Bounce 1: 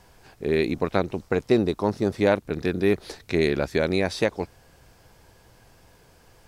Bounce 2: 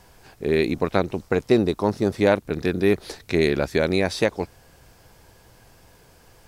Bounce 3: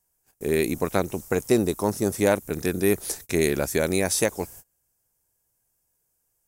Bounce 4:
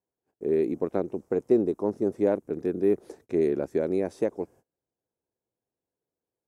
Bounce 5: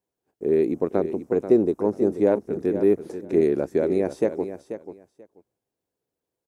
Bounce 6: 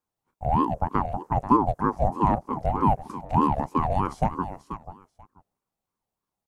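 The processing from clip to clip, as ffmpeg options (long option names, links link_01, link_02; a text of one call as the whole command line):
ffmpeg -i in.wav -af "highshelf=frequency=9000:gain=4,volume=2dB" out.wav
ffmpeg -i in.wav -af "agate=range=-28dB:threshold=-44dB:ratio=16:detection=peak,aexciter=amount=8.7:drive=4.6:freq=6100,volume=-2.5dB" out.wav
ffmpeg -i in.wav -af "bandpass=frequency=360:width_type=q:width=1.3:csg=0" out.wav
ffmpeg -i in.wav -af "aecho=1:1:486|972:0.282|0.0479,volume=4dB" out.wav
ffmpeg -i in.wav -af "aeval=exprs='val(0)*sin(2*PI*490*n/s+490*0.4/3.2*sin(2*PI*3.2*n/s))':channel_layout=same,volume=1dB" out.wav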